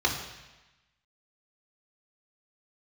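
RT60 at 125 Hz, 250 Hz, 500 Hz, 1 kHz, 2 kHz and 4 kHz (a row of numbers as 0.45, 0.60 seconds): 1.1, 1.1, 1.0, 1.1, 1.2, 1.1 seconds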